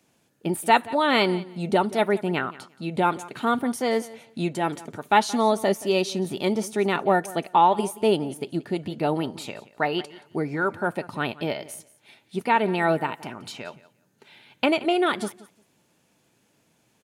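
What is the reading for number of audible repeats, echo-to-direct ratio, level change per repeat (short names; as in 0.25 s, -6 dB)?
2, -19.0 dB, -14.5 dB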